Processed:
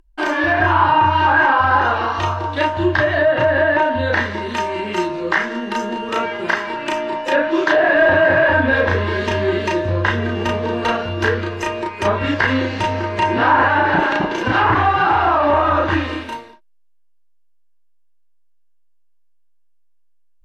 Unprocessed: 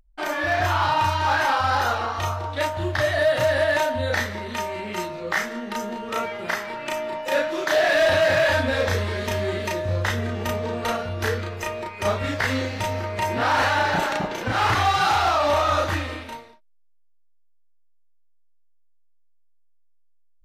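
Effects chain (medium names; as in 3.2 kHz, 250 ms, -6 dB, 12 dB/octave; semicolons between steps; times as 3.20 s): low-pass that closes with the level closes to 1.7 kHz, closed at -16.5 dBFS; small resonant body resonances 330/1000/1600/2800 Hz, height 10 dB, ringing for 30 ms; trim +4 dB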